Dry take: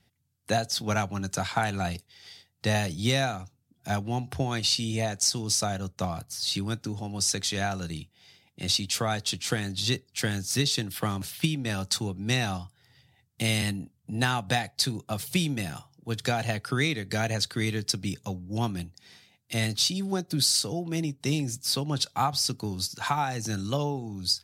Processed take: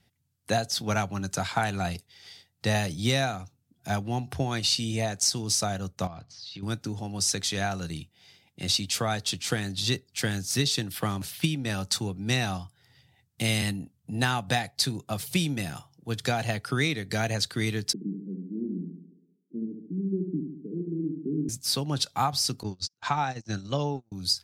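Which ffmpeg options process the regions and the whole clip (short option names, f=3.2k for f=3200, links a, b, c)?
-filter_complex "[0:a]asettb=1/sr,asplit=3[a][b][c];[a]atrim=end=6.074[d];[b]atrim=start=6.07:end=6.63,asetpts=PTS-STARTPTS,afade=t=in:d=0.004:c=qsin,afade=t=out:st=0.556:d=0.004:c=qsin,acompressor=threshold=-38dB:ratio=6:attack=3.2:release=140:knee=1:detection=peak,lowpass=f=5.1k:w=0.5412,lowpass=f=5.1k:w=1.3066[e];[c]atrim=start=6.626[f];[d][e]acrossfade=d=0.004:c1=hsin:c2=qsin[g];[g][f]acrossfade=d=0.004:c1=qsin:c2=hsin,asettb=1/sr,asplit=3[h][i][j];[h]atrim=end=17.934[k];[i]atrim=start=17.93:end=21.49,asetpts=PTS-STARTPTS,afade=t=in:d=0.004:c=qsin,afade=t=out:st=3.556:d=0.004:c=qsin,asuperpass=centerf=260:order=12:qfactor=1,aecho=1:1:71|142|213|284|355|426|497:0.531|0.297|0.166|0.0932|0.0522|0.0292|0.0164,atrim=end_sample=156996[l];[j]atrim=start=21.486[m];[k][l]acrossfade=d=0.004:c1=hsin:c2=qsin[n];[n][m]acrossfade=d=0.004:c1=qsin:c2=hsin,asettb=1/sr,asplit=3[o][p][q];[o]atrim=end=22.634[r];[p]atrim=start=22.63:end=24.12,asetpts=PTS-STARTPTS,afade=t=in:d=0.004:c=qsin,afade=t=out:st=1.486:d=0.004:c=qsin,lowpass=f=6.8k:w=0.5412,lowpass=f=6.8k:w=1.3066,agate=range=-41dB:threshold=-32dB:ratio=16:release=100:detection=peak[s];[q]atrim=start=24.116[t];[r][s]acrossfade=d=0.004:c1=hsin:c2=qsin[u];[u][t]acrossfade=d=0.004:c1=qsin:c2=hsin"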